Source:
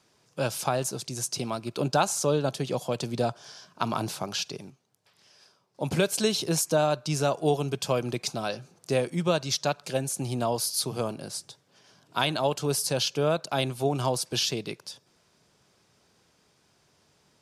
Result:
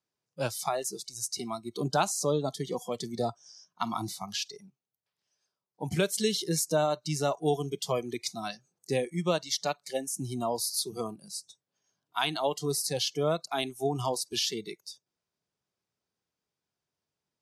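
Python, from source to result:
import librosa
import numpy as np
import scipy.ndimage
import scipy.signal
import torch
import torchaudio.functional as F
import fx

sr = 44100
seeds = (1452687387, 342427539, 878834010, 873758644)

y = fx.noise_reduce_blind(x, sr, reduce_db=21)
y = y * 10.0 ** (-2.5 / 20.0)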